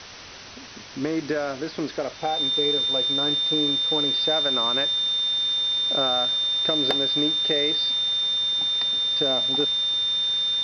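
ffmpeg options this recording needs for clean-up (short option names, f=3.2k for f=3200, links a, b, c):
-af "bandreject=f=97.3:t=h:w=4,bandreject=f=194.6:t=h:w=4,bandreject=f=291.9:t=h:w=4,bandreject=f=389.2:t=h:w=4,bandreject=f=3.6k:w=30,afwtdn=0.014"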